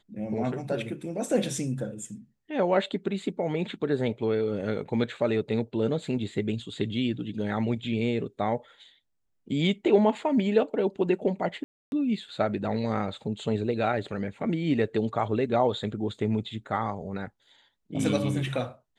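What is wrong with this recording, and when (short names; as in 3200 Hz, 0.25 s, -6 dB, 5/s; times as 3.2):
11.64–11.92 gap 0.281 s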